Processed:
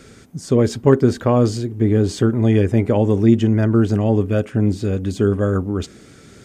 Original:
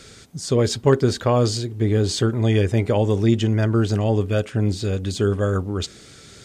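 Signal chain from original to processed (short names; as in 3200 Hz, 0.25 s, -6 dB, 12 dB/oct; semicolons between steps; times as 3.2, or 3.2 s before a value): graphic EQ 250/4000/8000 Hz +6/-8/-4 dB; gain +1 dB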